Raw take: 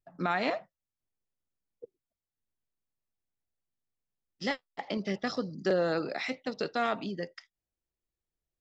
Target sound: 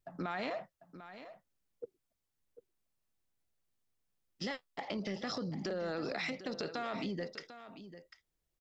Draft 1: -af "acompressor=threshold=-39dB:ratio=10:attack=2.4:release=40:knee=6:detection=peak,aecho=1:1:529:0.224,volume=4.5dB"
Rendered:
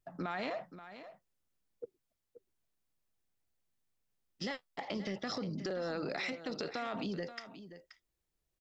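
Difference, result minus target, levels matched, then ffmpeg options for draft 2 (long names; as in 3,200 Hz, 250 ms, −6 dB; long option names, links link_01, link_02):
echo 217 ms early
-af "acompressor=threshold=-39dB:ratio=10:attack=2.4:release=40:knee=6:detection=peak,aecho=1:1:746:0.224,volume=4.5dB"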